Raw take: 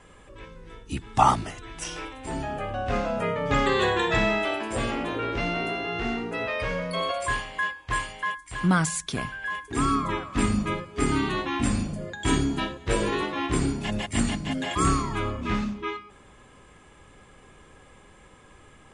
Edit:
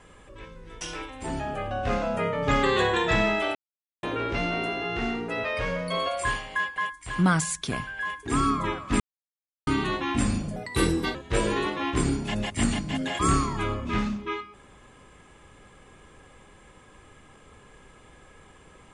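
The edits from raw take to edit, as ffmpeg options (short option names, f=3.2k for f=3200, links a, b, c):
-filter_complex "[0:a]asplit=9[a][b][c][d][e][f][g][h][i];[a]atrim=end=0.812[j];[b]atrim=start=1.838:end=4.58,asetpts=PTS-STARTPTS,afade=t=out:st=2.738:d=0.004:c=hsin[k];[c]atrim=start=4.58:end=5.06,asetpts=PTS-STARTPTS,volume=0[l];[d]atrim=start=5.06:end=7.792,asetpts=PTS-STARTPTS,afade=t=in:d=0.004:c=hsin[m];[e]atrim=start=8.208:end=10.45,asetpts=PTS-STARTPTS,afade=t=out:st=2.238:d=0.004:c=hsin[n];[f]atrim=start=10.45:end=11.12,asetpts=PTS-STARTPTS,volume=0[o];[g]atrim=start=11.12:end=12.014,asetpts=PTS-STARTPTS,afade=t=in:d=0.004:c=hsin[p];[h]atrim=start=12.01:end=12.71,asetpts=PTS-STARTPTS,asetrate=52479,aresample=44100,atrim=end_sample=25941,asetpts=PTS-STARTPTS[q];[i]atrim=start=12.706[r];[k][l][m]concat=n=3:v=0:a=1[s];[j][s]acrossfade=d=0.004:c1=hsin:c2=hsin[t];[n][o][p]concat=n=3:v=0:a=1[u];[t][u]acrossfade=d=0.004:c1=hsin:c2=hsin[v];[v][q]acrossfade=d=0.004:c1=hsin:c2=hsin[w];[w][r]acrossfade=d=0.004:c1=hsin:c2=hsin"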